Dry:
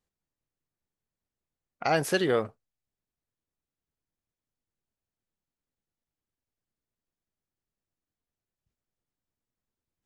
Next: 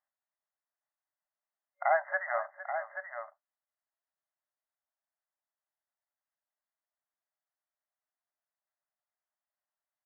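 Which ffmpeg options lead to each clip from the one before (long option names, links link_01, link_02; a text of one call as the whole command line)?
ffmpeg -i in.wav -filter_complex "[0:a]afftfilt=real='re*between(b*sr/4096,560,2100)':imag='im*between(b*sr/4096,560,2100)':win_size=4096:overlap=0.75,asplit=2[link_01][link_02];[link_02]aecho=0:1:459|831:0.2|0.376[link_03];[link_01][link_03]amix=inputs=2:normalize=0" out.wav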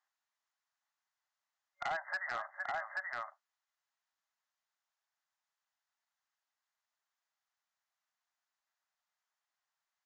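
ffmpeg -i in.wav -af "highpass=frequency=800:width=0.5412,highpass=frequency=800:width=1.3066,acompressor=threshold=-41dB:ratio=4,aresample=16000,asoftclip=type=hard:threshold=-38dB,aresample=44100,volume=6.5dB" out.wav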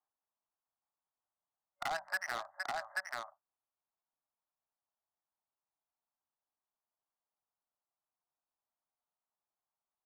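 ffmpeg -i in.wav -filter_complex "[0:a]bandreject=frequency=50:width_type=h:width=6,bandreject=frequency=100:width_type=h:width=6,bandreject=frequency=150:width_type=h:width=6,bandreject=frequency=200:width_type=h:width=6,acrossover=split=230|1100[link_01][link_02][link_03];[link_03]acrusher=bits=5:mix=0:aa=0.5[link_04];[link_01][link_02][link_04]amix=inputs=3:normalize=0,volume=1dB" out.wav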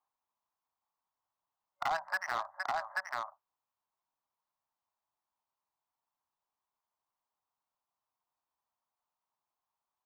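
ffmpeg -i in.wav -af "equalizer=frequency=100:width_type=o:width=0.67:gain=4,equalizer=frequency=1000:width_type=o:width=0.67:gain=10,equalizer=frequency=10000:width_type=o:width=0.67:gain=-9" out.wav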